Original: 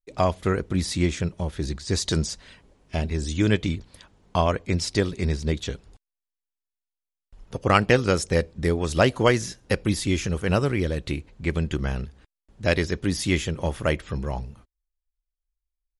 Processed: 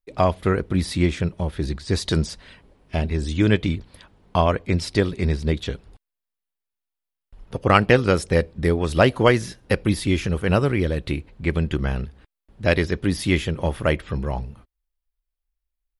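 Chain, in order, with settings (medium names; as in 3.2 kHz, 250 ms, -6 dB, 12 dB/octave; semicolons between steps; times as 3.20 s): peaking EQ 6.7 kHz -10 dB 0.77 oct; trim +3 dB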